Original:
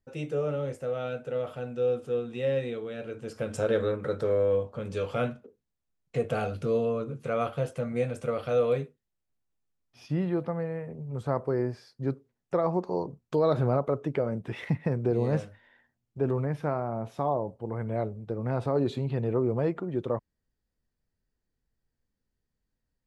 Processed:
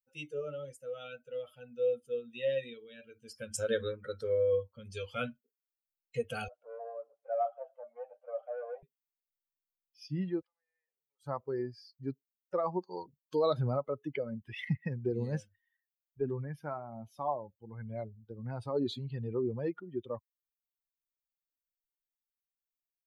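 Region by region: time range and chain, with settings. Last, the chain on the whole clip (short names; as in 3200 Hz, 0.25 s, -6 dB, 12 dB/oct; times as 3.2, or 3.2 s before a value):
6.48–8.83 sample leveller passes 3 + ladder band-pass 720 Hz, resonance 65% + feedback echo 0.139 s, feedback 42%, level -19 dB
10.41–11.23 HPF 820 Hz + compressor 10:1, threshold -53 dBFS
whole clip: per-bin expansion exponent 2; high shelf 2300 Hz +11 dB; gain -2 dB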